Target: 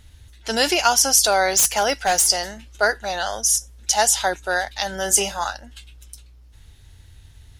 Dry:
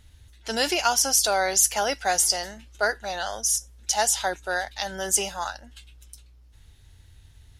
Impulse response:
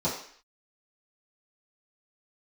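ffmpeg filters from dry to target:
-filter_complex "[0:a]asplit=3[a][b][c];[a]afade=t=out:st=1.47:d=0.02[d];[b]aeval=exprs='0.178*(abs(mod(val(0)/0.178+3,4)-2)-1)':c=same,afade=t=in:st=1.47:d=0.02,afade=t=out:st=2.27:d=0.02[e];[c]afade=t=in:st=2.27:d=0.02[f];[d][e][f]amix=inputs=3:normalize=0,asettb=1/sr,asplit=3[g][h][i];[g]atrim=end=4.904[j];[h]atrim=start=4.9:end=5.53,asetpts=PTS-STARTPTS,afade=t=in:d=0.004:c=qsin,afade=t=out:st=0.626:d=0.004:c=qsin,asplit=2[k][l];[l]adelay=30,volume=-11.5dB[m];[k][m]amix=inputs=2:normalize=0,atrim=end_sample=27783[n];[i]atrim=start=5.526[o];[j][n]acrossfade=d=0.004:c1=hsin:c2=qsin[p];[p][o]acrossfade=d=0.004:c1=qsin:c2=hsin,volume=5dB"

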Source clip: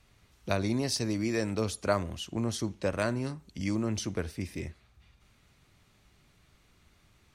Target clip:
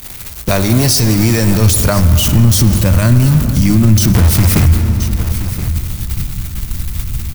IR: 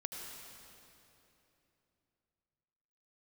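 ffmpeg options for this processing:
-filter_complex "[0:a]aeval=exprs='val(0)+0.5*0.0251*sgn(val(0))':c=same,bandreject=f=50:t=h:w=6,bandreject=f=100:t=h:w=6,agate=range=-39dB:threshold=-36dB:ratio=16:detection=peak,aemphasis=mode=production:type=50fm,asplit=2[a][b];[b]acompressor=mode=upward:threshold=-28dB:ratio=2.5,volume=2dB[c];[a][c]amix=inputs=2:normalize=0,asubboost=boost=12:cutoff=140,asettb=1/sr,asplit=3[d][e][f];[d]atrim=end=4.144[g];[e]atrim=start=4.14:end=4.66,asetpts=PTS-STARTPTS,afade=t=in:d=0.004:c=qsin,afade=t=out:st=0.516:d=0.004:c=qsin,acrusher=bits=4:dc=4:mix=0:aa=0.000001[h];[f]atrim=start=4.656[i];[g][h]acrossfade=d=0.004:c1=hsin:c2=qsin[j];[j][i]acrossfade=d=0.004:c1=qsin:c2=hsin,aecho=1:1:1024:0.141,asplit=2[k][l];[1:a]atrim=start_sample=2205,highshelf=f=3.9k:g=-11.5[m];[l][m]afir=irnorm=-1:irlink=0,volume=-3dB[n];[k][n]amix=inputs=2:normalize=0,alimiter=level_in=6.5dB:limit=-1dB:release=50:level=0:latency=1,volume=-1dB"

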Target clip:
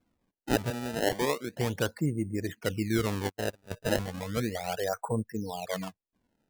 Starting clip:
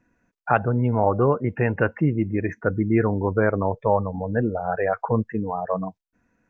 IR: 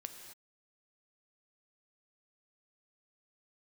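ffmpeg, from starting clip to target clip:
-filter_complex "[0:a]asettb=1/sr,asplit=3[a][b][c];[a]atrim=end=0.704[d];[b]atrim=start=0.7:end=1.54,asetpts=PTS-STARTPTS,afade=t=in:d=0.004:c=qsin,afade=t=out:st=0.836:d=0.004:c=qsin,highpass=260[e];[c]atrim=start=1.536[f];[d][e]acrossfade=d=0.004:c1=hsin:c2=qsin[g];[g][f]acrossfade=d=0.004:c1=qsin:c2=hsin,asplit=3[h][i][j];[h]afade=t=out:st=3.28:d=0.02[k];[i]agate=range=-53dB:threshold=-17dB:ratio=16:detection=peak,afade=t=in:st=3.28:d=0.02,afade=t=out:st=3.7:d=0.02[l];[j]afade=t=in:st=3.7:d=0.02[m];[k][l][m]amix=inputs=3:normalize=0,asettb=1/sr,asplit=3[n][o][p];[n]atrim=end=5.124[q];[o]atrim=start=5.12:end=5.73,asetpts=PTS-STARTPTS,afade=t=in:d=0.004:c=qsin,afade=t=out:st=0.606:d=0.004:c=qsin,equalizer=f=1.2k:t=o:w=0.4:g=-13[r];[p]atrim=start=5.726[s];[q][r]acrossfade=d=0.004:c1=hsin:c2=qsin[t];[t][s]acrossfade=d=0.004:c1=qsin:c2=hsin,acrusher=samples=23:mix=1:aa=0.000001:lfo=1:lforange=36.8:lforate=0.34,volume=-8dB"

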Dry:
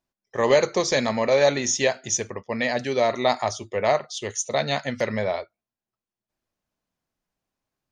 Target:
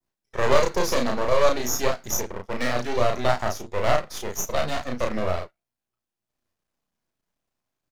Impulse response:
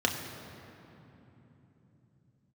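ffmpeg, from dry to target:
-filter_complex "[0:a]adynamicequalizer=threshold=0.0112:dfrequency=2700:dqfactor=0.73:tfrequency=2700:tqfactor=0.73:attack=5:release=100:ratio=0.375:range=4:mode=cutabove:tftype=bell,aeval=exprs='max(val(0),0)':c=same,asplit=2[a][b];[b]adelay=33,volume=-3dB[c];[a][c]amix=inputs=2:normalize=0,volume=2.5dB"

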